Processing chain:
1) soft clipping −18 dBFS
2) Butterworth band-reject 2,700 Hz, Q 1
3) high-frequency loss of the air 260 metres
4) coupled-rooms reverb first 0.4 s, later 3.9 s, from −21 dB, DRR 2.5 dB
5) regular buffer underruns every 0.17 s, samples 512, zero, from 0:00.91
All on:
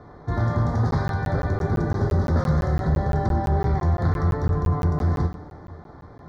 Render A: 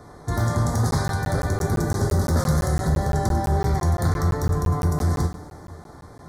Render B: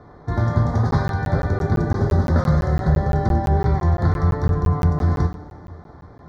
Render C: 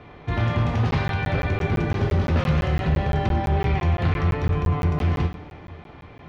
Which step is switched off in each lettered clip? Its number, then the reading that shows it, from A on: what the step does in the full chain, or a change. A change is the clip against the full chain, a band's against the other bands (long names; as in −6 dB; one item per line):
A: 3, 4 kHz band +8.0 dB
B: 1, distortion level −13 dB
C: 2, 4 kHz band +9.5 dB